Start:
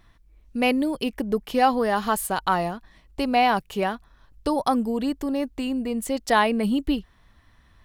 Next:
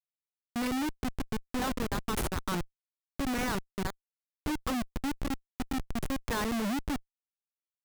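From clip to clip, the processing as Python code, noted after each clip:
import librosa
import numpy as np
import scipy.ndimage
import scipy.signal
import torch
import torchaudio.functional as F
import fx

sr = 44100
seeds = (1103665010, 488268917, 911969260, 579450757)

y = fx.fixed_phaser(x, sr, hz=1600.0, stages=4)
y = fx.dereverb_blind(y, sr, rt60_s=1.1)
y = fx.schmitt(y, sr, flips_db=-26.5)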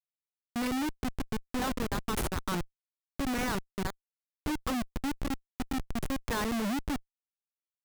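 y = x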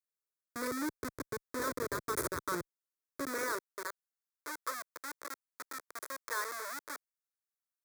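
y = fx.filter_sweep_highpass(x, sr, from_hz=150.0, to_hz=800.0, start_s=2.98, end_s=4.01, q=0.77)
y = fx.fixed_phaser(y, sr, hz=780.0, stages=6)
y = y * 10.0 ** (1.0 / 20.0)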